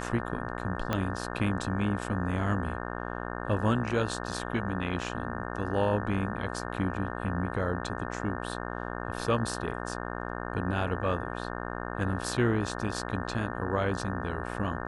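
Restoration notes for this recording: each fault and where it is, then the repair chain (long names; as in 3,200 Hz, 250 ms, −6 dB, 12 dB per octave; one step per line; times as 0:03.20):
mains buzz 60 Hz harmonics 30 −36 dBFS
0:00.93: click −14 dBFS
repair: click removal
hum removal 60 Hz, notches 30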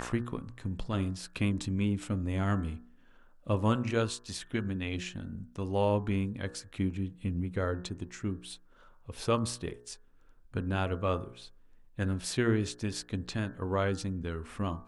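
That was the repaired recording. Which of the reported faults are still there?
0:00.93: click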